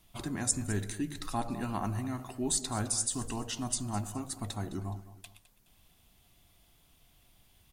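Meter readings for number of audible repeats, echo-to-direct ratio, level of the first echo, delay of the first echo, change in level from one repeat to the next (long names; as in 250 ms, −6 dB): 2, −15.0 dB, −15.5 dB, 210 ms, −8.5 dB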